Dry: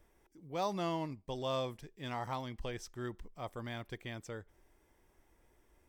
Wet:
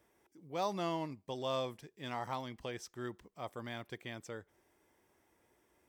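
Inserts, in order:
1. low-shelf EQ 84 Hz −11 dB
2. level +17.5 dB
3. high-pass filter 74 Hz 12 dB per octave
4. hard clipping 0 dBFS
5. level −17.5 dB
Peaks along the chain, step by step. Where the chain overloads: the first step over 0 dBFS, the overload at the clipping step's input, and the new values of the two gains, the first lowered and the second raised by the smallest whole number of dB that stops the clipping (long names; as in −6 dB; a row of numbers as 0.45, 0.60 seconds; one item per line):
−23.5, −6.0, −5.5, −5.5, −23.0 dBFS
no step passes full scale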